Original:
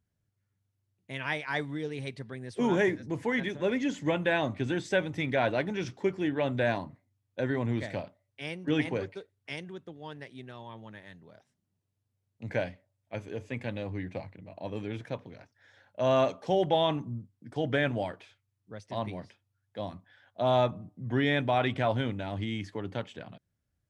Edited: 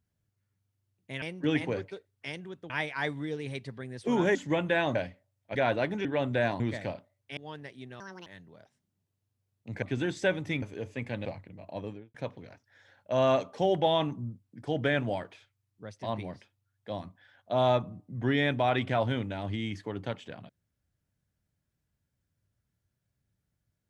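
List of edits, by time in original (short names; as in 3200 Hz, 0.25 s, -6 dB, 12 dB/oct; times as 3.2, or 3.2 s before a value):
2.87–3.91 cut
4.51–5.31 swap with 12.57–13.17
5.81–6.29 cut
6.84–7.69 cut
8.46–9.94 move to 1.22
10.57–11.01 speed 167%
13.8–14.14 cut
14.64–15.03 studio fade out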